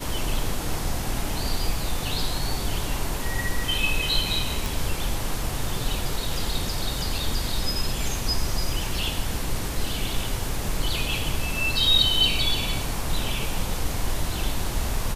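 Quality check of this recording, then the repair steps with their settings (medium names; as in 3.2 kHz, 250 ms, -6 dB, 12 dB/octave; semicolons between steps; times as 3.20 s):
4.66 s: pop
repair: de-click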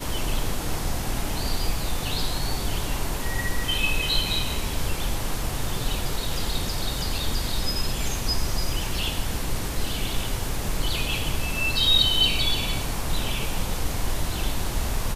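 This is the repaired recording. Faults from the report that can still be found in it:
nothing left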